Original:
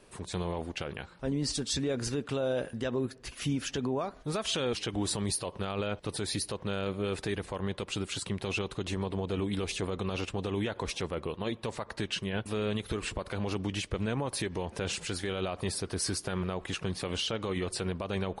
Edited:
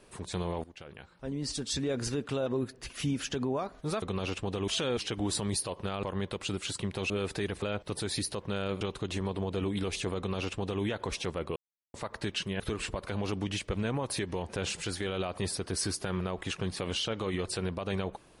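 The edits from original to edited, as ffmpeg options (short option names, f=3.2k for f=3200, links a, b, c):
-filter_complex "[0:a]asplit=12[a][b][c][d][e][f][g][h][i][j][k][l];[a]atrim=end=0.64,asetpts=PTS-STARTPTS,afade=t=out:st=0.636:d=0.004:c=hsin:silence=0.16788[m];[b]atrim=start=0.64:end=2.462,asetpts=PTS-STARTPTS,afade=t=in:d=1.32:silence=0.16788[n];[c]atrim=start=2.878:end=4.442[o];[d]atrim=start=9.928:end=10.592[p];[e]atrim=start=4.438:end=5.792[q];[f]atrim=start=7.498:end=8.572[r];[g]atrim=start=6.978:end=7.502[s];[h]atrim=start=5.788:end=6.982[t];[i]atrim=start=8.568:end=11.32,asetpts=PTS-STARTPTS,afade=t=out:st=2.748:d=0.004:c=hsin[u];[j]atrim=start=11.32:end=11.7,asetpts=PTS-STARTPTS,volume=0[v];[k]atrim=start=11.7:end=12.362,asetpts=PTS-STARTPTS,afade=t=in:d=0.004:c=hsin[w];[l]atrim=start=12.828[x];[m][n]concat=n=2:v=0:a=1[y];[y][o]acrossfade=d=0.004:c1=hsin:c2=hsin[z];[z][p]acrossfade=d=0.004:c1=hsin:c2=hsin[aa];[aa][q]acrossfade=d=0.004:c1=hsin:c2=hsin[ab];[ab][r]acrossfade=d=0.004:c1=hsin:c2=hsin[ac];[ac][s]acrossfade=d=0.004:c1=hsin:c2=hsin[ad];[ad][t]acrossfade=d=0.004:c1=hsin:c2=hsin[ae];[u][v][w]concat=n=3:v=0:a=1[af];[ae][af]acrossfade=d=0.004:c1=hsin:c2=hsin[ag];[ag][x]acrossfade=d=0.004:c1=hsin:c2=hsin"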